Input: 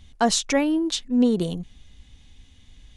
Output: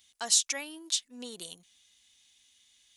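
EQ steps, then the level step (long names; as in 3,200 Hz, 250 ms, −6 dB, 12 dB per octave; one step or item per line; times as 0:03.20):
first difference
+2.0 dB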